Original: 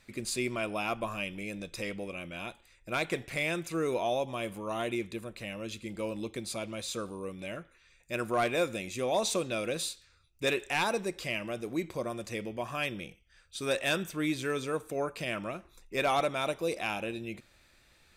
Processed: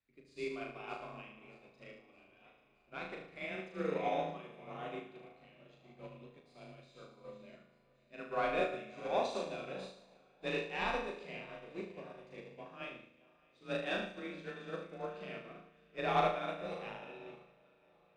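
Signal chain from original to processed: backward echo that repeats 310 ms, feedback 80%, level -13 dB; low-pass 3.4 kHz 12 dB/octave; flutter echo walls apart 6.4 m, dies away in 1.1 s; on a send at -12.5 dB: reverberation RT60 0.45 s, pre-delay 3 ms; on the sum: frequency shift +28 Hz; upward expansion 2.5:1, over -37 dBFS; trim -4.5 dB

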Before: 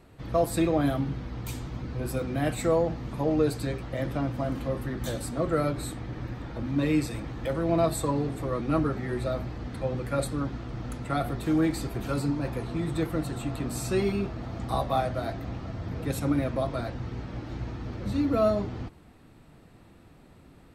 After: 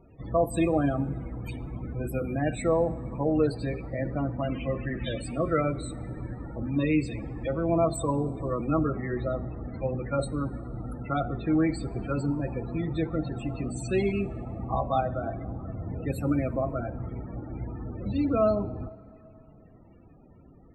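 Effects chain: peaking EQ 2.6 kHz +4.5 dB 0.97 oct, from 4.40 s +14 dB, from 5.61 s +4 dB; loudest bins only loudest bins 32; plate-style reverb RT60 3 s, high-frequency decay 0.55×, DRR 18 dB

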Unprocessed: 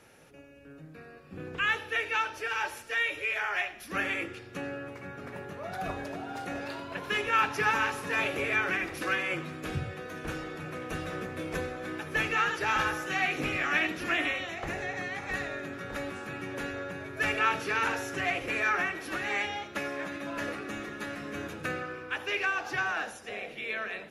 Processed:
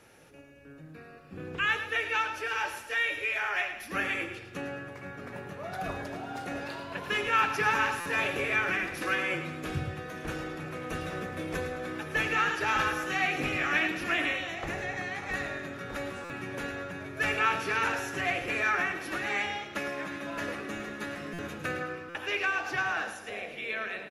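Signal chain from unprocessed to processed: on a send: feedback delay 108 ms, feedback 42%, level -10.5 dB; on the sum: buffer glitch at 8.00/16.24/21.33/22.09 s, samples 256, times 9

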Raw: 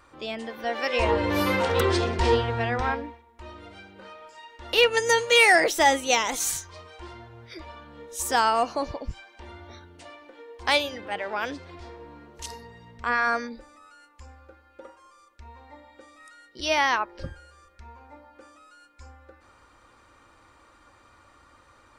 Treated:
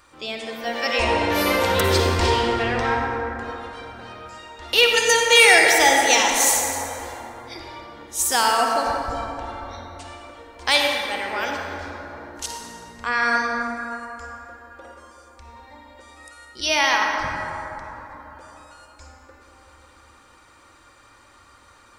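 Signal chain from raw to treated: treble shelf 2.4 kHz +10 dB; reverberation RT60 3.7 s, pre-delay 43 ms, DRR 0 dB; trim -1 dB

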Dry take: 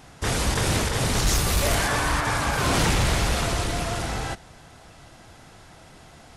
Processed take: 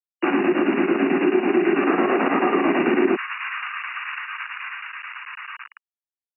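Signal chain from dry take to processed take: reverberation RT60 0.95 s, pre-delay 3 ms, DRR -5 dB; square tremolo 9.1 Hz, depth 60%, duty 75%; bit crusher 4-bit; frequency shift -410 Hz; brick-wall FIR low-pass 2.9 kHz; delay 1196 ms -8.5 dB; compression 4:1, threshold -21 dBFS, peak gain reduction 12 dB; steep high-pass 190 Hz 48 dB/octave, from 3.15 s 1.1 kHz; trim +4.5 dB

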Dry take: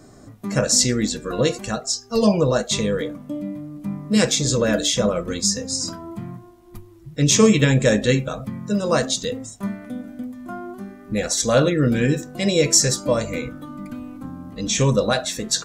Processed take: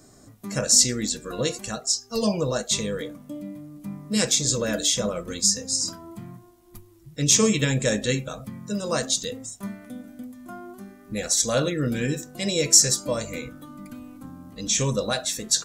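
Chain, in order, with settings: treble shelf 4.3 kHz +11 dB; trim -7 dB

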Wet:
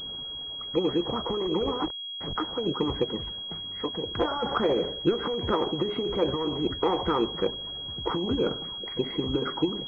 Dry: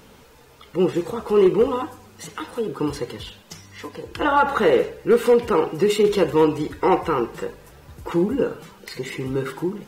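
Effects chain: 1.79–2.35 s: send-on-delta sampling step -31.5 dBFS; distance through air 400 m; peak limiter -18 dBFS, peak gain reduction 9 dB; harmonic-percussive split harmonic -14 dB; class-D stage that switches slowly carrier 3.3 kHz; trim +6.5 dB

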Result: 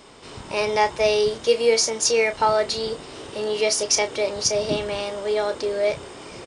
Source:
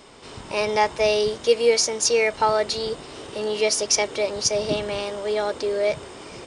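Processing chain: doubling 31 ms -10.5 dB

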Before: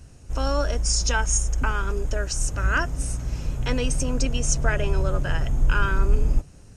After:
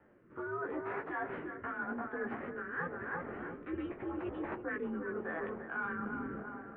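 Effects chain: tracing distortion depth 0.11 ms; chorus voices 4, 0.48 Hz, delay 17 ms, depth 4.3 ms; tape echo 346 ms, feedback 53%, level -7 dB, low-pass 1.2 kHz; formant shift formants +3 st; rotary cabinet horn 0.85 Hz; mistuned SSB -170 Hz 400–2100 Hz; reverse; compression 6:1, threshold -40 dBFS, peak gain reduction 12.5 dB; reverse; trim +4.5 dB

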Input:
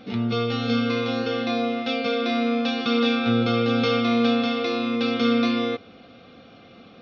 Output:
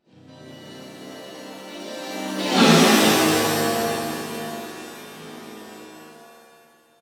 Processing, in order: Doppler pass-by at 2.59 s, 34 m/s, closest 2.2 m; harmony voices -5 st -5 dB, +3 st -4 dB, +12 st -14 dB; pitch-shifted reverb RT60 2.1 s, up +7 st, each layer -2 dB, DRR -7 dB; trim +2 dB

